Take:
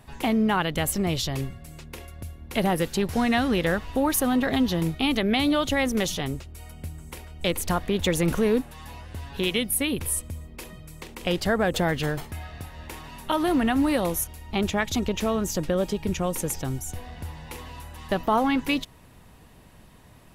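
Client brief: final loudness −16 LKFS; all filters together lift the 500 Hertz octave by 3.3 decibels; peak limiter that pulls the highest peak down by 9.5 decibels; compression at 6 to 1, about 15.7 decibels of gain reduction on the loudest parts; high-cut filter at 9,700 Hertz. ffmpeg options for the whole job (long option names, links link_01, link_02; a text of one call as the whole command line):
ffmpeg -i in.wav -af "lowpass=9700,equalizer=frequency=500:width_type=o:gain=4,acompressor=threshold=-34dB:ratio=6,volume=24dB,alimiter=limit=-5.5dB:level=0:latency=1" out.wav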